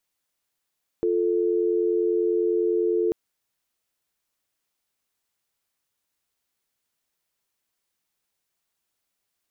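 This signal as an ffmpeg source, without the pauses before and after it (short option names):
-f lavfi -i "aevalsrc='0.075*(sin(2*PI*350*t)+sin(2*PI*440*t))':d=2.09:s=44100"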